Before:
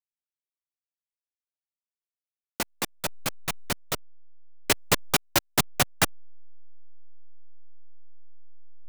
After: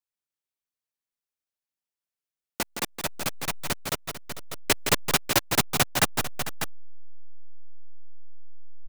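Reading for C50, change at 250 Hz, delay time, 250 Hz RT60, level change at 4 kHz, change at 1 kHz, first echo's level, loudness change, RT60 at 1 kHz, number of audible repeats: no reverb audible, +1.0 dB, 166 ms, no reverb audible, +1.5 dB, +1.5 dB, −7.5 dB, +0.5 dB, no reverb audible, 3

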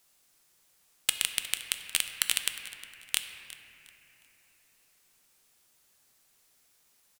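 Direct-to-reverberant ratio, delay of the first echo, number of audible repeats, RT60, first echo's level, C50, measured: 6.0 dB, 359 ms, 2, 2.9 s, −17.0 dB, 7.0 dB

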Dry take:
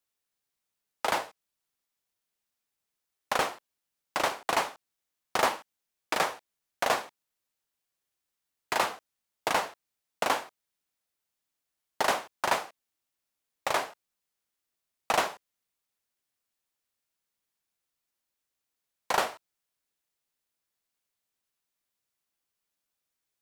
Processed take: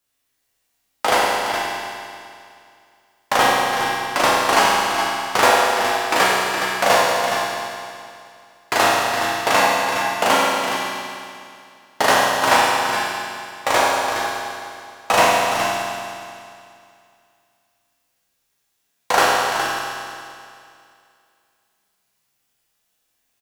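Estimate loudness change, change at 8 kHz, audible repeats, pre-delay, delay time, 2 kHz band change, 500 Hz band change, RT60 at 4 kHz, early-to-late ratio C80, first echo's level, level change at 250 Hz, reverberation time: +12.0 dB, +14.5 dB, 1, 9 ms, 416 ms, +15.0 dB, +14.0 dB, 2.4 s, −1.5 dB, −8.0 dB, +15.5 dB, 2.4 s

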